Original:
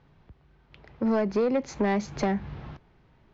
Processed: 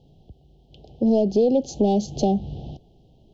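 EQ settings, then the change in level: Chebyshev band-stop 770–3000 Hz, order 4; +6.5 dB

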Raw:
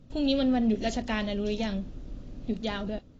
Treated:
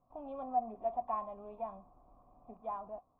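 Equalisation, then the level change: vocal tract filter a; bell 1100 Hz +9 dB 0.74 oct; +2.5 dB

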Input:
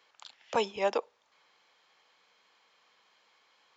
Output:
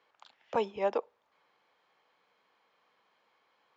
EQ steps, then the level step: LPF 1200 Hz 6 dB/oct; 0.0 dB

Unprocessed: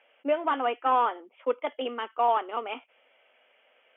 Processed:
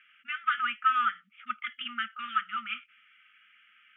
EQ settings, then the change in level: brick-wall FIR band-stop 220–1200 Hz; LPF 2000 Hz 6 dB/oct; +8.5 dB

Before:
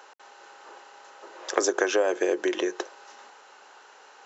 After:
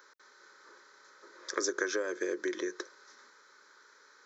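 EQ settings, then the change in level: high shelf 6600 Hz +4.5 dB; fixed phaser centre 2800 Hz, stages 6; -5.0 dB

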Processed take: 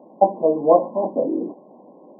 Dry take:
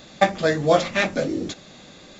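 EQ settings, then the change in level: HPF 240 Hz 24 dB/oct; brick-wall FIR low-pass 1100 Hz; +3.5 dB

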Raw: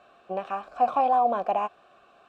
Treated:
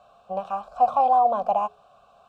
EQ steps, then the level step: low shelf 240 Hz +6 dB; notches 60/120/180/240/300/360/420 Hz; fixed phaser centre 800 Hz, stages 4; +3.0 dB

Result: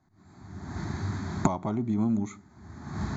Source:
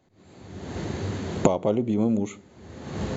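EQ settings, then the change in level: LPF 6100 Hz 12 dB/oct; dynamic EQ 3300 Hz, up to +4 dB, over -46 dBFS, Q 0.76; fixed phaser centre 1200 Hz, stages 4; 0.0 dB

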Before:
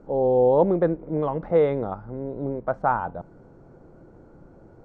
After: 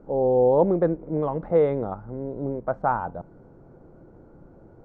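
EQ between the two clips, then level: high shelf 2400 Hz -9.5 dB; 0.0 dB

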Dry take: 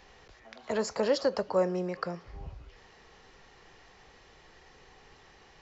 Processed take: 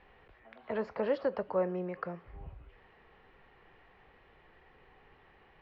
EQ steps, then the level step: LPF 2800 Hz 24 dB/oct; -4.0 dB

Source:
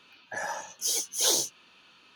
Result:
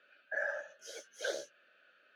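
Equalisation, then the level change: double band-pass 960 Hz, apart 1.4 oct; +4.0 dB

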